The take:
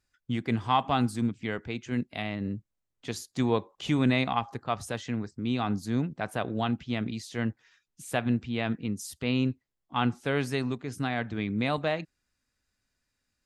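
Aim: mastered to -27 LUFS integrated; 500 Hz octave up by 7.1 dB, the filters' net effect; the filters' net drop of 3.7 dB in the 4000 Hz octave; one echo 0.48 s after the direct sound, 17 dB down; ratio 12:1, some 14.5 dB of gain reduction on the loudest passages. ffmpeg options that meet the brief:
-af "equalizer=f=500:t=o:g=9,equalizer=f=4k:t=o:g=-5,acompressor=threshold=-29dB:ratio=12,aecho=1:1:480:0.141,volume=8.5dB"

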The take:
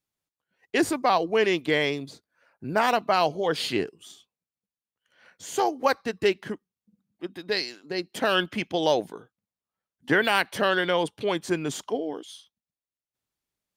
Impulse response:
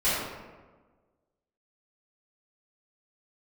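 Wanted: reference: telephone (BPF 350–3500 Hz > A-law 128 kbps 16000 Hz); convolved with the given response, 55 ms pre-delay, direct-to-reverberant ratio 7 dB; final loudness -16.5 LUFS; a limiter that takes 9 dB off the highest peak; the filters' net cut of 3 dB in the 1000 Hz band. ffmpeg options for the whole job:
-filter_complex "[0:a]equalizer=f=1k:t=o:g=-4,alimiter=limit=-18.5dB:level=0:latency=1,asplit=2[a][b];[1:a]atrim=start_sample=2205,adelay=55[c];[b][c]afir=irnorm=-1:irlink=0,volume=-20.5dB[d];[a][d]amix=inputs=2:normalize=0,highpass=350,lowpass=3.5k,volume=15.5dB" -ar 16000 -c:a pcm_alaw

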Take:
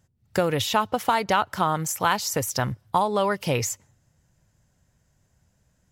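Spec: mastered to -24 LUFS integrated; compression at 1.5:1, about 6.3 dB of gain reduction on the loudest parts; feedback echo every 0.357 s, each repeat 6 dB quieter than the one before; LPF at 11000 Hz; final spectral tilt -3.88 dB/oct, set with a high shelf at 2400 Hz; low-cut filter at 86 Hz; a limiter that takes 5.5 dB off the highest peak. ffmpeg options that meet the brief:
-af "highpass=86,lowpass=11k,highshelf=f=2.4k:g=-3.5,acompressor=threshold=-35dB:ratio=1.5,alimiter=limit=-19.5dB:level=0:latency=1,aecho=1:1:357|714|1071|1428|1785|2142:0.501|0.251|0.125|0.0626|0.0313|0.0157,volume=7.5dB"

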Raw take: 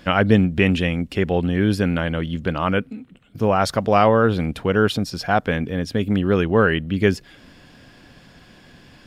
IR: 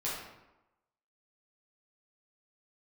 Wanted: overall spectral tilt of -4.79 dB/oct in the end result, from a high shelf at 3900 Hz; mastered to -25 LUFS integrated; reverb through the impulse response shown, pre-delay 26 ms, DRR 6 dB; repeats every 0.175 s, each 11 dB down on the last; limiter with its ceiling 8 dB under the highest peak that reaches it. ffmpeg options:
-filter_complex "[0:a]highshelf=f=3.9k:g=8.5,alimiter=limit=-9.5dB:level=0:latency=1,aecho=1:1:175|350|525:0.282|0.0789|0.0221,asplit=2[a][b];[1:a]atrim=start_sample=2205,adelay=26[c];[b][c]afir=irnorm=-1:irlink=0,volume=-10.5dB[d];[a][d]amix=inputs=2:normalize=0,volume=-4.5dB"

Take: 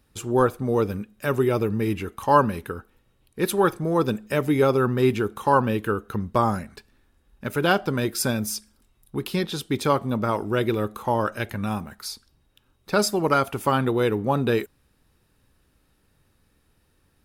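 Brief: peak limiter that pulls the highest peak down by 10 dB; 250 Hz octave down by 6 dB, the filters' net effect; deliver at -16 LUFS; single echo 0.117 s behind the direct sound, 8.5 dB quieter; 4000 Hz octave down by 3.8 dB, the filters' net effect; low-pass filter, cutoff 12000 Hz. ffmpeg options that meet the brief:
-af "lowpass=12k,equalizer=f=250:t=o:g=-8.5,equalizer=f=4k:t=o:g=-5,alimiter=limit=-15.5dB:level=0:latency=1,aecho=1:1:117:0.376,volume=12dB"

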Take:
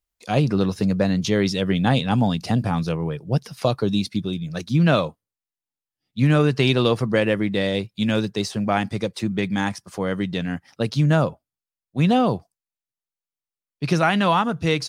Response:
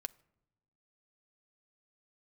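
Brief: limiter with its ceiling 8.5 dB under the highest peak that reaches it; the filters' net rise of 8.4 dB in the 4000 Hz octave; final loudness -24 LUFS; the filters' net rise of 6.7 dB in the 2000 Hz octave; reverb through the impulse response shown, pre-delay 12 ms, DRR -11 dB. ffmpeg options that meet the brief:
-filter_complex "[0:a]equalizer=f=2k:t=o:g=6.5,equalizer=f=4k:t=o:g=8,alimiter=limit=-8.5dB:level=0:latency=1,asplit=2[a][b];[1:a]atrim=start_sample=2205,adelay=12[c];[b][c]afir=irnorm=-1:irlink=0,volume=13.5dB[d];[a][d]amix=inputs=2:normalize=0,volume=-13.5dB"

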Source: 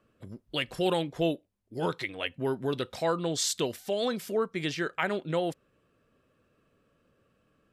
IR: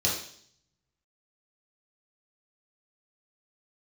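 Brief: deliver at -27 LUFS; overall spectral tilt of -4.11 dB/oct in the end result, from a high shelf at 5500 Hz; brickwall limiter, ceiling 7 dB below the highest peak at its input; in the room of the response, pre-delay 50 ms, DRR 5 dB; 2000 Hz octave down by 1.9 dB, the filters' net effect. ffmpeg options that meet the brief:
-filter_complex "[0:a]equalizer=f=2k:t=o:g=-3.5,highshelf=f=5.5k:g=6.5,alimiter=limit=-20.5dB:level=0:latency=1,asplit=2[a][b];[1:a]atrim=start_sample=2205,adelay=50[c];[b][c]afir=irnorm=-1:irlink=0,volume=-15dB[d];[a][d]amix=inputs=2:normalize=0,volume=3.5dB"

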